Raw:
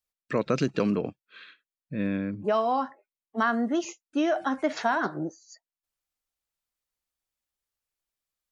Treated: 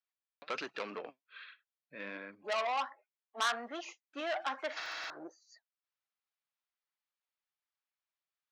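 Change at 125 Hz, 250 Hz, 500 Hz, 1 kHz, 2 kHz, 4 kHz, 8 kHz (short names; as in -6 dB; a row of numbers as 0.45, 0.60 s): under -30 dB, -22.5 dB, -12.5 dB, -8.5 dB, -6.0 dB, +0.5 dB, n/a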